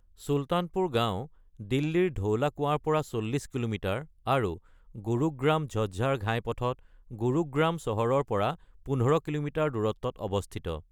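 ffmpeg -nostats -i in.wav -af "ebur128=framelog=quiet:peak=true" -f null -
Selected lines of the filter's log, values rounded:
Integrated loudness:
  I:         -29.5 LUFS
  Threshold: -39.9 LUFS
Loudness range:
  LRA:         1.4 LU
  Threshold: -49.8 LUFS
  LRA low:   -30.5 LUFS
  LRA high:  -29.0 LUFS
True peak:
  Peak:      -12.1 dBFS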